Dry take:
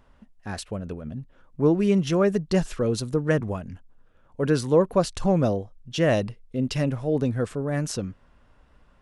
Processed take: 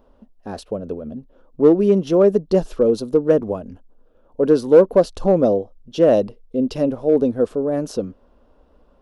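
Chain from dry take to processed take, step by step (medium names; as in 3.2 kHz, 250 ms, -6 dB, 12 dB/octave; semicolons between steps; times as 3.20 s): graphic EQ 125/250/500/2000/8000 Hz -12/+5/+8/-12/-10 dB; in parallel at -6 dB: hard clipper -10.5 dBFS, distortion -14 dB; on the sum: trim -1 dB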